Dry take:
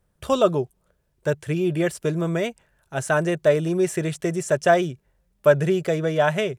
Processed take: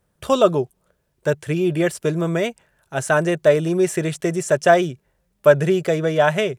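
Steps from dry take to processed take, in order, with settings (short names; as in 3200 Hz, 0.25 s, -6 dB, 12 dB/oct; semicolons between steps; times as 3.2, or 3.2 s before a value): low shelf 69 Hz -10 dB; gain +3.5 dB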